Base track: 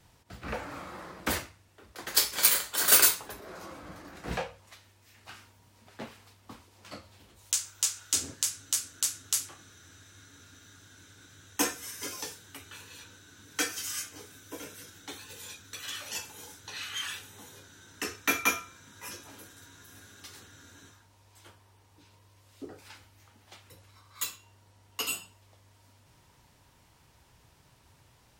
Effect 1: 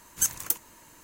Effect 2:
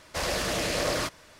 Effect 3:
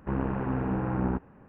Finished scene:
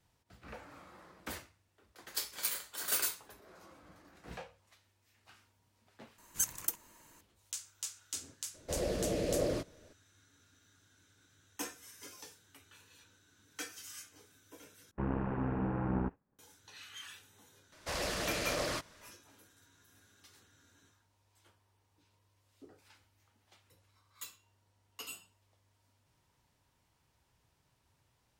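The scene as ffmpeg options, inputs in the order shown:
-filter_complex "[2:a]asplit=2[a][b];[0:a]volume=-13dB[c];[a]lowshelf=f=720:t=q:w=1.5:g=12[d];[3:a]agate=range=-33dB:threshold=-41dB:ratio=3:release=100:detection=peak[e];[c]asplit=3[f][g][h];[f]atrim=end=6.184[i];[1:a]atrim=end=1.03,asetpts=PTS-STARTPTS,volume=-7.5dB[j];[g]atrim=start=7.206:end=14.914[k];[e]atrim=end=1.48,asetpts=PTS-STARTPTS,volume=-5.5dB[l];[h]atrim=start=16.386[m];[d]atrim=end=1.39,asetpts=PTS-STARTPTS,volume=-15dB,afade=t=in:d=0.004:c=hsin,afade=t=out:st=1.386:d=0.004:c=hsin,adelay=8540[n];[b]atrim=end=1.39,asetpts=PTS-STARTPTS,volume=-7.5dB,afade=t=in:d=0.004:c=hsin,afade=t=out:st=1.386:d=0.004:c=hsin,adelay=17720[o];[i][j]acrossfade=d=0.004:c1=hsin:c2=hsin[p];[p][k]acrossfade=d=0.004:c1=hsin:c2=hsin[q];[q][l]acrossfade=d=0.004:c1=hsin:c2=hsin[r];[r][m]acrossfade=d=0.004:c1=hsin:c2=hsin[s];[s][n][o]amix=inputs=3:normalize=0"

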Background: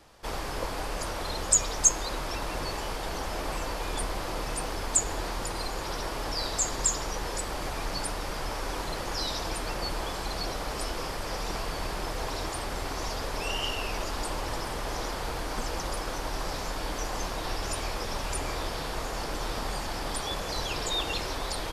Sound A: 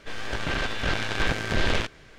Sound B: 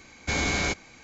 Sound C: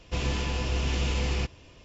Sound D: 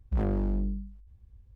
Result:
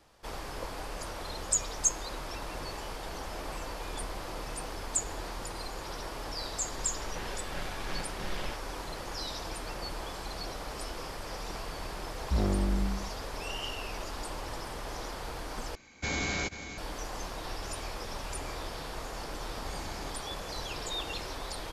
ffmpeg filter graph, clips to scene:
-filter_complex "[2:a]asplit=2[a][b];[0:a]volume=-6dB[c];[1:a]aecho=1:1:5.4:0.65[d];[a]aecho=1:1:488:0.299[e];[b]equalizer=f=1.8k:t=o:w=2.4:g=-13[f];[c]asplit=2[g][h];[g]atrim=end=15.754[i];[e]atrim=end=1.03,asetpts=PTS-STARTPTS,volume=-6dB[j];[h]atrim=start=16.776[k];[d]atrim=end=2.18,asetpts=PTS-STARTPTS,volume=-16dB,afade=t=in:d=0.004:c=hsin,afade=t=out:st=2.176:d=0.004:c=hsin,adelay=6690[l];[4:a]atrim=end=1.55,asetpts=PTS-STARTPTS,volume=-0.5dB,afade=t=in:d=0.004:c=hsin,afade=t=out:st=1.546:d=0.004:c=hsin,adelay=12190[m];[f]atrim=end=1.03,asetpts=PTS-STARTPTS,volume=-16dB,afade=t=in:d=0.004:c=hsin,afade=t=out:st=1.026:d=0.004:c=hsin,adelay=19380[n];[i][j]acrossfade=d=0.004:c1=hsin:c2=hsin[o];[o][k]acrossfade=d=0.004:c1=hsin:c2=hsin[p];[p][l][m][n]amix=inputs=4:normalize=0"

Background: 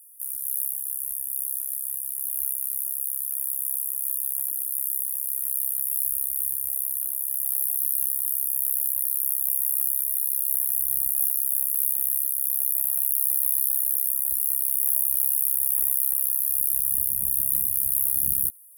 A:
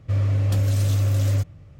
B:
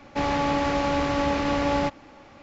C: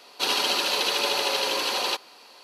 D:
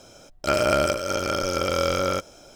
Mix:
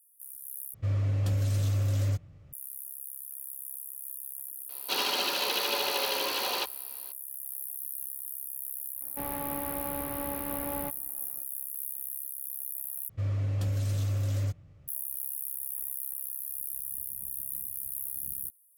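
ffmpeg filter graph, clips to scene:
-filter_complex "[1:a]asplit=2[a][b];[0:a]volume=-13dB[c];[3:a]highshelf=f=8.7k:g=-6.5[d];[2:a]aemphasis=mode=reproduction:type=75fm[e];[c]asplit=3[f][g][h];[f]atrim=end=0.744[i];[a]atrim=end=1.79,asetpts=PTS-STARTPTS,volume=-7dB[j];[g]atrim=start=2.526:end=13.094[k];[b]atrim=end=1.79,asetpts=PTS-STARTPTS,volume=-9dB[l];[h]atrim=start=14.876[m];[d]atrim=end=2.43,asetpts=PTS-STARTPTS,volume=-4.5dB,afade=t=in:d=0.004:c=hsin,afade=t=out:st=2.426:d=0.004:c=hsin,adelay=206829S[n];[e]atrim=end=2.42,asetpts=PTS-STARTPTS,volume=-13dB,afade=t=in:d=0.004:c=hsin,afade=t=out:st=2.416:d=0.004:c=hsin,adelay=9010[o];[i][j]acrossfade=d=0.004:c1=hsin:c2=hsin[p];[p][k]acrossfade=d=0.004:c1=hsin:c2=hsin[q];[q][l]acrossfade=d=0.004:c1=hsin:c2=hsin[r];[r][m]acrossfade=d=0.004:c1=hsin:c2=hsin[s];[s][n][o]amix=inputs=3:normalize=0"

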